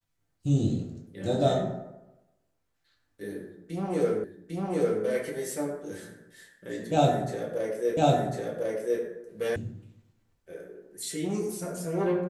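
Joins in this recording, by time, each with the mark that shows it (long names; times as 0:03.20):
0:04.24: the same again, the last 0.8 s
0:07.97: the same again, the last 1.05 s
0:09.56: cut off before it has died away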